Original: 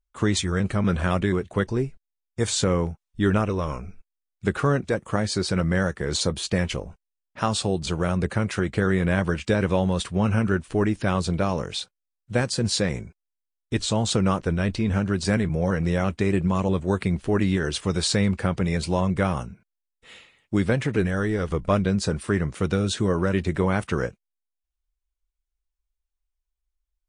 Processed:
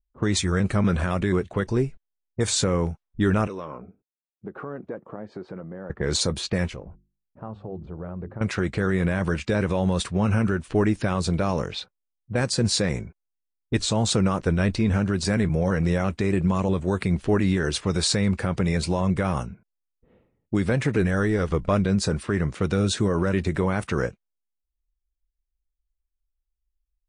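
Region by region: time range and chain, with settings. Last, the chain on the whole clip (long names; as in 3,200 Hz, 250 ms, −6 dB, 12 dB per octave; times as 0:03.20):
0:03.47–0:05.90: downward compressor 10 to 1, threshold −29 dBFS + high-pass filter 220 Hz
0:06.69–0:08.41: high-shelf EQ 4,100 Hz −8 dB + mains-hum notches 50/100/150/200/250/300/350 Hz + downward compressor 2 to 1, threshold −41 dBFS
whole clip: low-pass that shuts in the quiet parts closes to 310 Hz, open at −21.5 dBFS; brickwall limiter −14 dBFS; dynamic equaliser 3,100 Hz, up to −5 dB, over −52 dBFS, Q 5.9; level +2 dB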